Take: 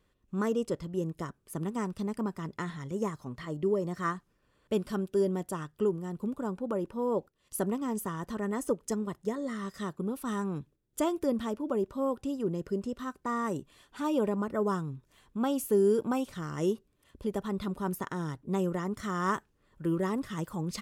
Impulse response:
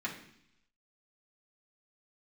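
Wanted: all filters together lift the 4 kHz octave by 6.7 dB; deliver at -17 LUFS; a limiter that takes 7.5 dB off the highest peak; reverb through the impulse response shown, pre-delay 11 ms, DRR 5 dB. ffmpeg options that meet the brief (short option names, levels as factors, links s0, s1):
-filter_complex "[0:a]equalizer=f=4000:t=o:g=9,alimiter=limit=0.0708:level=0:latency=1,asplit=2[s0][s1];[1:a]atrim=start_sample=2205,adelay=11[s2];[s1][s2]afir=irnorm=-1:irlink=0,volume=0.355[s3];[s0][s3]amix=inputs=2:normalize=0,volume=6.31"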